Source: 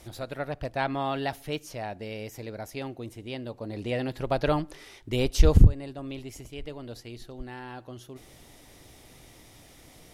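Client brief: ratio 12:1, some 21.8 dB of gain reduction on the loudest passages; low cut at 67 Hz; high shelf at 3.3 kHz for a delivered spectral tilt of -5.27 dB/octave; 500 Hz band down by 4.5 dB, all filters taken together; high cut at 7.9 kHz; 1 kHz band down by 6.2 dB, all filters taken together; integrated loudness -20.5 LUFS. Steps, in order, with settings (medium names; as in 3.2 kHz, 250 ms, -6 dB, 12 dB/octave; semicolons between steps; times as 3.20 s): high-pass 67 Hz; low-pass 7.9 kHz; peaking EQ 500 Hz -3.5 dB; peaking EQ 1 kHz -7 dB; treble shelf 3.3 kHz -3 dB; compression 12:1, threshold -36 dBFS; trim +22 dB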